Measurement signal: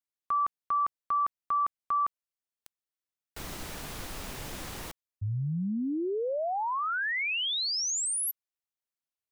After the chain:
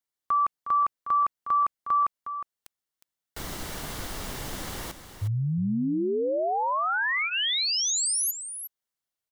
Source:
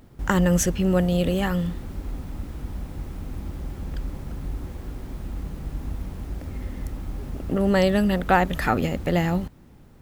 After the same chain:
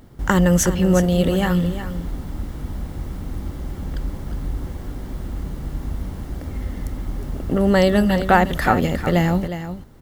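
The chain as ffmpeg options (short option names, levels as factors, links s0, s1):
-filter_complex "[0:a]bandreject=f=2500:w=11,asplit=2[s0][s1];[s1]aecho=0:1:361:0.299[s2];[s0][s2]amix=inputs=2:normalize=0,volume=1.58"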